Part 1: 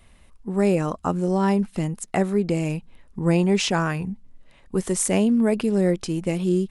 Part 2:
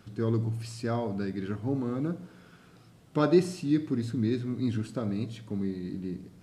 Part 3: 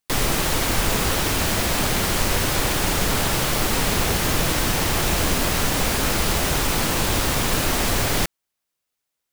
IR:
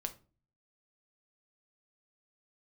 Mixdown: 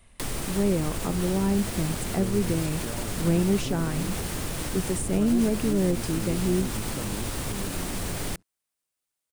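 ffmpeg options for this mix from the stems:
-filter_complex "[0:a]volume=-3dB[a];[1:a]aeval=exprs='if(lt(val(0),0),0.251*val(0),val(0))':c=same,agate=range=-33dB:threshold=-50dB:ratio=3:detection=peak,adelay=2000,volume=2dB[b];[2:a]adelay=100,volume=-5.5dB[c];[b][c]amix=inputs=2:normalize=0,alimiter=limit=-18.5dB:level=0:latency=1:release=137,volume=0dB[d];[a][d]amix=inputs=2:normalize=0,equalizer=f=9k:t=o:w=0.46:g=7,acrossover=split=450[e][f];[f]acompressor=threshold=-33dB:ratio=5[g];[e][g]amix=inputs=2:normalize=0"

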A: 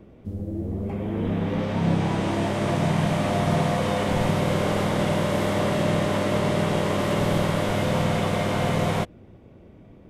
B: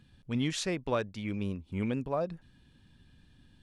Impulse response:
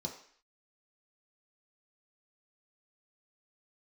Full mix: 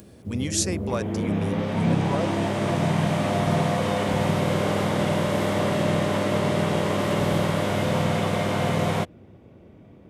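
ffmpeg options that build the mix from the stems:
-filter_complex "[0:a]volume=0dB[a];[1:a]acompressor=mode=upward:threshold=-51dB:ratio=2.5,aexciter=amount=5.4:drive=4.3:freq=5k,volume=1.5dB[b];[a][b]amix=inputs=2:normalize=0,highpass=65"

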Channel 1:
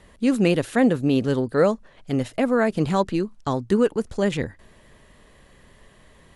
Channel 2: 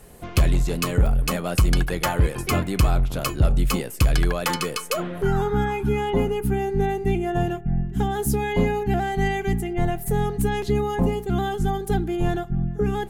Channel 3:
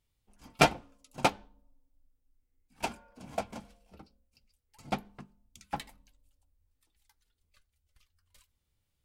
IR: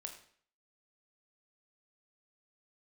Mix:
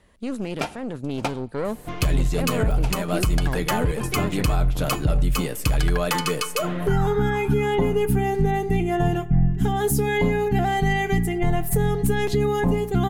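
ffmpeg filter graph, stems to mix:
-filter_complex "[0:a]alimiter=limit=-14.5dB:level=0:latency=1:release=26,aeval=exprs='(tanh(7.94*val(0)+0.65)-tanh(0.65))/7.94':c=same,volume=-3.5dB[a];[1:a]aecho=1:1:6.7:0.38,adelay=1650,volume=-2.5dB,asplit=2[b][c];[c]volume=-9dB[d];[2:a]volume=-2.5dB,asplit=2[e][f];[f]volume=-7.5dB[g];[3:a]atrim=start_sample=2205[h];[d][g]amix=inputs=2:normalize=0[i];[i][h]afir=irnorm=-1:irlink=0[j];[a][b][e][j]amix=inputs=4:normalize=0,dynaudnorm=f=180:g=17:m=11.5dB,alimiter=limit=-12dB:level=0:latency=1:release=431"

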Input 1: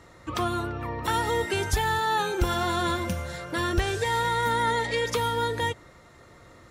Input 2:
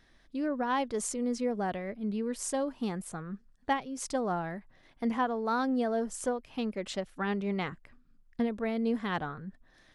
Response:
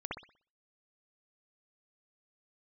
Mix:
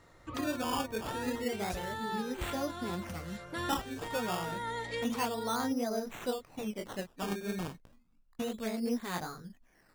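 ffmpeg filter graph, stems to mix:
-filter_complex "[0:a]volume=-9dB[a];[1:a]flanger=delay=16.5:depth=6.9:speed=2.9,acrusher=samples=15:mix=1:aa=0.000001:lfo=1:lforange=15:lforate=0.3,volume=-1dB,asplit=2[b][c];[c]apad=whole_len=295583[d];[a][d]sidechaincompress=threshold=-36dB:ratio=8:attack=5.5:release=1140[e];[e][b]amix=inputs=2:normalize=0"

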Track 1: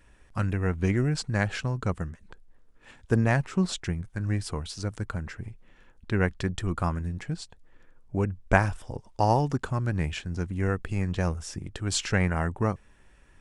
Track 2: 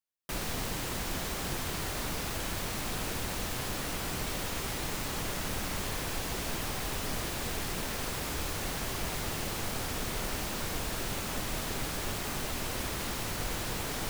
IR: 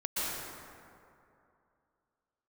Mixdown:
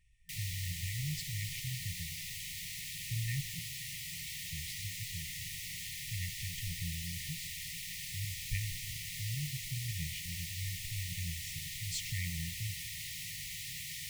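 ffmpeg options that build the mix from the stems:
-filter_complex "[0:a]volume=-11.5dB,asplit=3[a][b][c];[a]atrim=end=3.59,asetpts=PTS-STARTPTS,afade=t=out:st=3.586:d=0.004:c=hsin[d];[b]atrim=start=3.59:end=4.49,asetpts=PTS-STARTPTS,volume=0[e];[c]atrim=start=4.49,asetpts=PTS-STARTPTS,afade=t=in:d=0.004:c=hsin[f];[d][e][f]concat=n=3:v=0:a=1,asplit=2[g][h];[h]volume=-20dB[i];[1:a]highpass=f=260:p=1,volume=-4dB[j];[2:a]atrim=start_sample=2205[k];[i][k]afir=irnorm=-1:irlink=0[l];[g][j][l]amix=inputs=3:normalize=0,afftfilt=real='re*(1-between(b*sr/4096,180,1800))':imag='im*(1-between(b*sr/4096,180,1800))':win_size=4096:overlap=0.75"

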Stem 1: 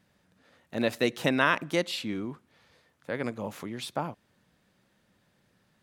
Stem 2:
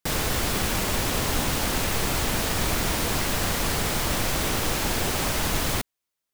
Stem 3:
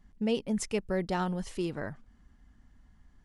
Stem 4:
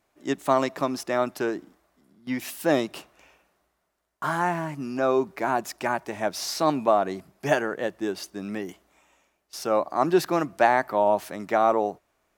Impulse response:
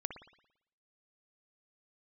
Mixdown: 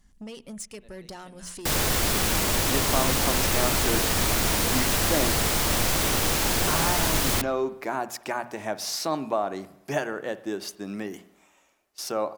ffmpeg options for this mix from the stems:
-filter_complex "[0:a]volume=-20dB,asplit=2[a][b];[b]volume=-20dB[c];[1:a]adelay=1600,volume=-3dB,asplit=2[d][e];[e]volume=-4dB[f];[2:a]equalizer=f=9.1k:t=o:w=2.3:g=12.5,acompressor=threshold=-32dB:ratio=12,asoftclip=type=tanh:threshold=-33dB,volume=-2.5dB,asplit=3[g][h][i];[h]volume=-13dB[j];[3:a]acompressor=threshold=-32dB:ratio=1.5,adelay=2450,volume=-3dB,asplit=2[k][l];[l]volume=-5.5dB[m];[i]apad=whole_len=256732[n];[a][n]sidechaincompress=threshold=-55dB:ratio=10:attack=16:release=755[o];[4:a]atrim=start_sample=2205[p];[c][f][j][m]amix=inputs=4:normalize=0[q];[q][p]afir=irnorm=-1:irlink=0[r];[o][d][g][k][r]amix=inputs=5:normalize=0,bass=f=250:g=0,treble=f=4k:g=3,bandreject=f=60:t=h:w=6,bandreject=f=120:t=h:w=6,bandreject=f=180:t=h:w=6,bandreject=f=240:t=h:w=6"

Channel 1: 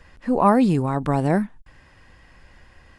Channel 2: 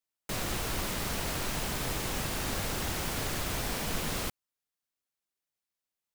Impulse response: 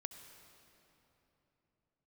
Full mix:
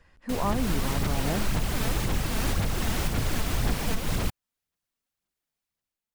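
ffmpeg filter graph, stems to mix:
-filter_complex "[0:a]volume=-10dB[a];[1:a]bass=f=250:g=7,treble=f=4k:g=-2,dynaudnorm=f=200:g=5:m=7dB,aphaser=in_gain=1:out_gain=1:delay=4.6:decay=0.42:speed=1.9:type=sinusoidal,volume=-4dB[b];[a][b]amix=inputs=2:normalize=0,alimiter=limit=-15.5dB:level=0:latency=1:release=251"

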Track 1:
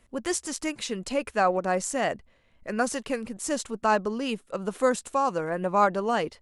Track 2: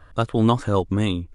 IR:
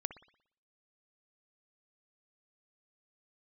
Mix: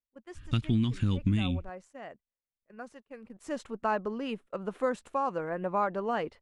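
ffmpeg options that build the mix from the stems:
-filter_complex "[0:a]volume=-4.5dB,afade=t=in:st=3.12:d=0.52:silence=0.223872[a];[1:a]firequalizer=gain_entry='entry(230,0);entry(550,-28);entry(2400,4)':delay=0.05:min_phase=1,alimiter=limit=-13dB:level=0:latency=1:release=322,adelay=350,volume=3dB[b];[a][b]amix=inputs=2:normalize=0,agate=range=-22dB:threshold=-48dB:ratio=16:detection=peak,bass=f=250:g=-1,treble=f=4k:g=-15,acompressor=threshold=-23dB:ratio=6"

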